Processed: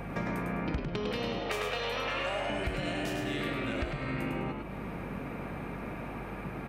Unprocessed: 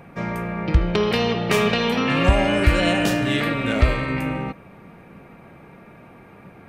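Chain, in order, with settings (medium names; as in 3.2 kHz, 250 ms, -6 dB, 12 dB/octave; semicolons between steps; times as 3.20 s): 1.39–2.50 s: high-pass 390 Hz 24 dB/octave; compression 12:1, threshold -36 dBFS, peak gain reduction 26 dB; hum 50 Hz, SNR 11 dB; frequency-shifting echo 103 ms, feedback 31%, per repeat +83 Hz, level -4.5 dB; trim +4 dB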